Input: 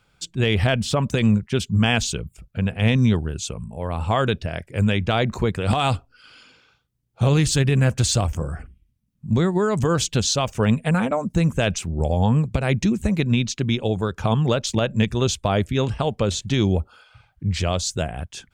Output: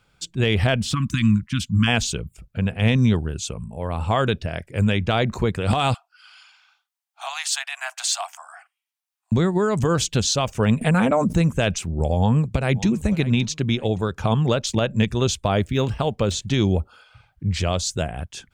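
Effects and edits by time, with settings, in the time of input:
0.94–1.88 s: spectral selection erased 330–1000 Hz
5.94–9.32 s: steep high-pass 680 Hz 96 dB/octave
10.81–11.42 s: level flattener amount 70%
12.18–12.88 s: echo throw 570 ms, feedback 30%, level -17 dB
15.57–16.32 s: median filter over 3 samples

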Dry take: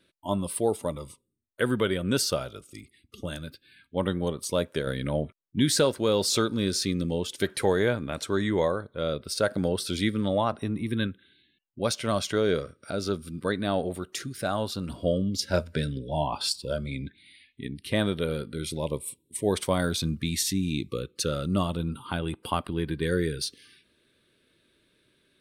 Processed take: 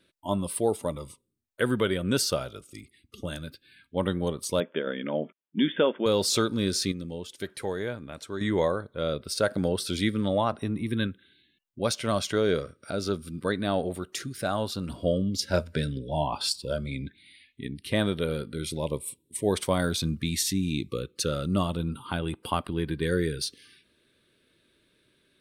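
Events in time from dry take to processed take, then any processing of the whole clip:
4.60–6.06 s: brick-wall FIR band-pass 160–3600 Hz
6.92–8.41 s: gain -8 dB

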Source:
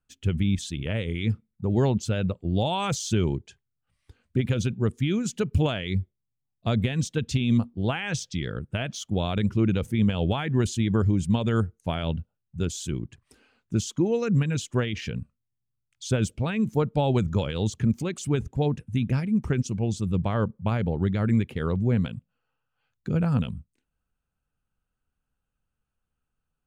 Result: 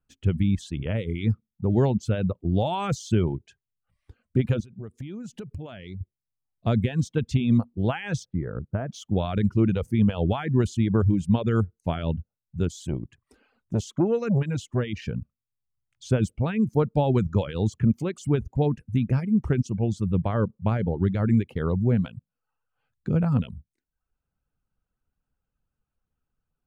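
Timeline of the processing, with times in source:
4.60–6.01 s: compression 16:1, threshold -34 dBFS
8.25–8.92 s: low-pass 1.5 kHz 24 dB/octave
12.72–14.89 s: transformer saturation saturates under 280 Hz
whole clip: reverb removal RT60 0.57 s; treble shelf 2.1 kHz -10.5 dB; trim +2.5 dB

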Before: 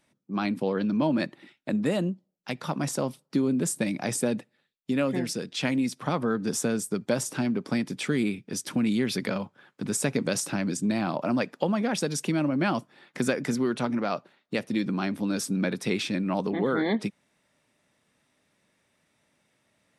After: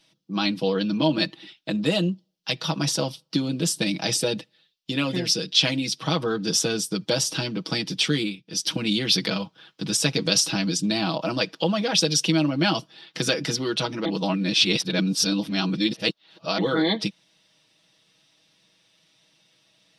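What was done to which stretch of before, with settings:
8.14–8.69 s: dip -12 dB, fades 0.26 s
14.05–16.58 s: reverse
whole clip: high-order bell 4 kHz +13 dB 1.3 oct; comb 6.2 ms, depth 81%

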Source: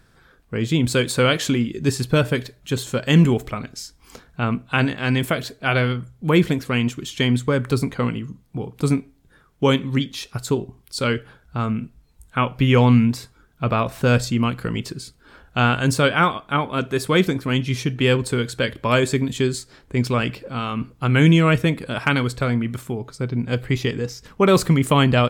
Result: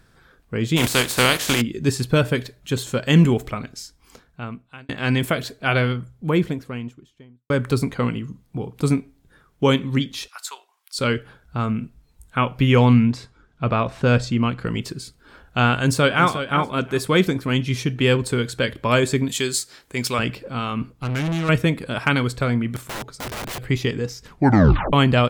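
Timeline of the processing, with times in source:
0.76–1.60 s: spectral contrast reduction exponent 0.44
3.54–4.89 s: fade out
5.72–7.50 s: studio fade out
10.28–10.99 s: high-pass 960 Hz 24 dB/octave
12.93–14.67 s: distance through air 74 m
15.74–16.27 s: echo throw 360 ms, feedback 15%, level -10 dB
19.29–20.19 s: tilt EQ +3 dB/octave
20.91–21.49 s: valve stage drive 21 dB, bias 0.55
22.76–23.61 s: integer overflow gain 25.5 dB
24.26 s: tape stop 0.67 s

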